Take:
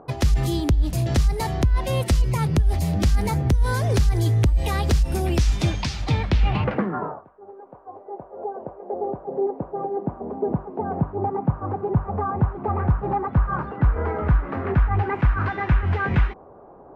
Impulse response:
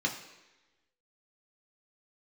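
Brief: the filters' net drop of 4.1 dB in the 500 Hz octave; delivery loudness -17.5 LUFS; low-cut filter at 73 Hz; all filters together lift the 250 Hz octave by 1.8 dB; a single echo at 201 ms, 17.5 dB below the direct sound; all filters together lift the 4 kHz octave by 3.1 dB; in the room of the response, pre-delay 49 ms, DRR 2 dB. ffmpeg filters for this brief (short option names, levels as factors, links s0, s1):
-filter_complex "[0:a]highpass=73,equalizer=f=250:t=o:g=5,equalizer=f=500:t=o:g=-8,equalizer=f=4000:t=o:g=4,aecho=1:1:201:0.133,asplit=2[s0][s1];[1:a]atrim=start_sample=2205,adelay=49[s2];[s1][s2]afir=irnorm=-1:irlink=0,volume=0.355[s3];[s0][s3]amix=inputs=2:normalize=0,volume=1.88"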